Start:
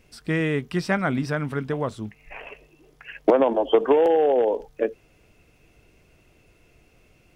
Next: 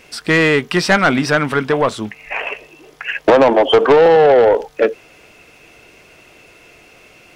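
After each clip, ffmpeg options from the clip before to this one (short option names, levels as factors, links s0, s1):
-filter_complex "[0:a]asplit=2[s0][s1];[s1]highpass=f=720:p=1,volume=11.2,asoftclip=type=tanh:threshold=0.596[s2];[s0][s2]amix=inputs=2:normalize=0,lowpass=f=6500:p=1,volume=0.501,volume=1.41"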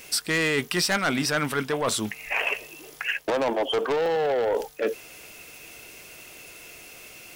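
-af "areverse,acompressor=threshold=0.112:ratio=6,areverse,aemphasis=mode=production:type=75fm,volume=0.668"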